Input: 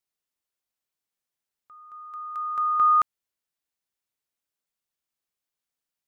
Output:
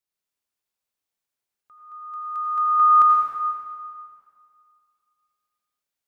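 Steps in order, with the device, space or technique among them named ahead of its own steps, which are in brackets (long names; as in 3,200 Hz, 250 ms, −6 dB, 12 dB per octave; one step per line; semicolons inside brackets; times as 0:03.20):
stairwell (convolution reverb RT60 2.3 s, pre-delay 77 ms, DRR −2.5 dB)
level −2.5 dB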